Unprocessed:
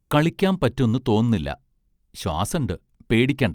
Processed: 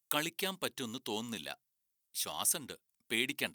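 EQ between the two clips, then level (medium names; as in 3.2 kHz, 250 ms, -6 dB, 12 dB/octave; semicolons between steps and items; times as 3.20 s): differentiator; dynamic bell 270 Hz, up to +7 dB, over -58 dBFS, Q 0.72; +1.5 dB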